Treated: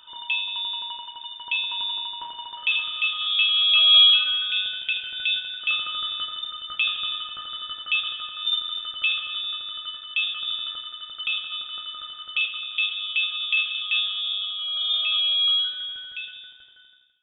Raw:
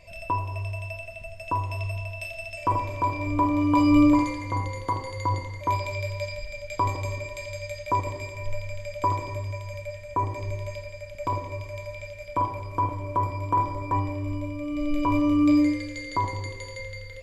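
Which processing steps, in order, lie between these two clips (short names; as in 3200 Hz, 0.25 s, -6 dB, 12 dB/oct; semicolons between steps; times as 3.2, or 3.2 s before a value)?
ending faded out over 3.19 s; bell 260 Hz +4.5 dB 1 oct; inverted band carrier 3600 Hz; spring tank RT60 2 s, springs 43 ms, chirp 45 ms, DRR 17.5 dB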